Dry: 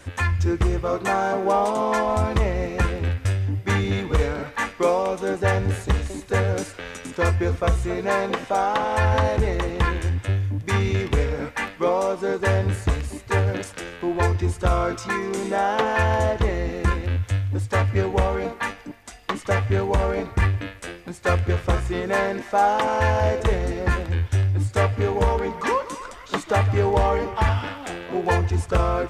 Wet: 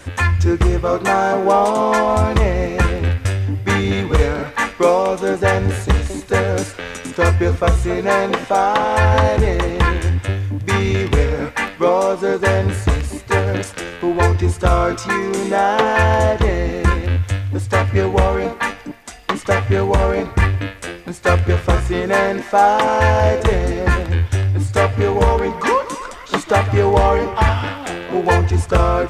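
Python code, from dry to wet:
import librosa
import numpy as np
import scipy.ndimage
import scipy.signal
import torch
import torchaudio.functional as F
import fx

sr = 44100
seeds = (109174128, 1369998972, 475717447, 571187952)

y = fx.hum_notches(x, sr, base_hz=50, count=2)
y = y * 10.0 ** (6.5 / 20.0)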